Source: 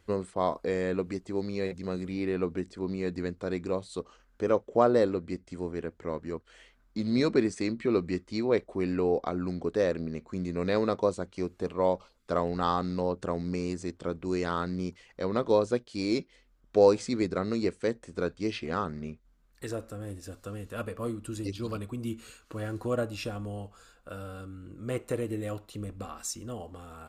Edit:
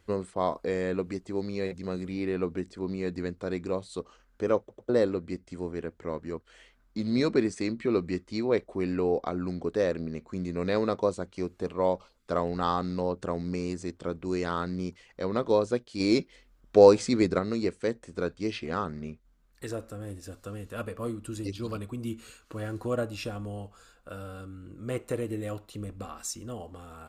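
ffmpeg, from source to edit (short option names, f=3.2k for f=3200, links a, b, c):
-filter_complex "[0:a]asplit=6[a][b][c][d][e][f];[a]atrim=end=4.692[g];[b]atrim=start=4.588:end=4.692[h];[c]atrim=start=4.588:end=4.692[i];[d]atrim=start=4.888:end=16.002[j];[e]atrim=start=15.998:end=17.392,asetpts=PTS-STARTPTS,volume=4.5dB[k];[f]atrim=start=17.388[l];[g][h]acrossfade=d=0.004:c1=hsin:c2=hsin[m];[m][i]acrossfade=d=0.004:c1=hsin:c2=hsin[n];[n][j]acrossfade=d=0.004:c1=hsin:c2=hsin[o];[o][k]acrossfade=d=0.004:c1=hsin:c2=hsin[p];[p][l]acrossfade=d=0.004:c1=hsin:c2=hsin"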